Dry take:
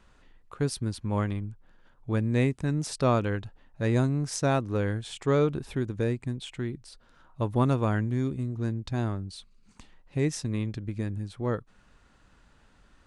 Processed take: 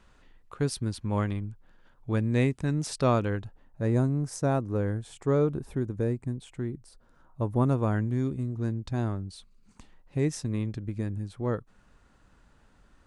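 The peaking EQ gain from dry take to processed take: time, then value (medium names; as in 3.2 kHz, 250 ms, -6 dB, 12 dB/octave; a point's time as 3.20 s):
peaking EQ 3.3 kHz 2.1 oct
3.05 s 0 dB
3.88 s -12 dB
7.55 s -12 dB
8.10 s -4.5 dB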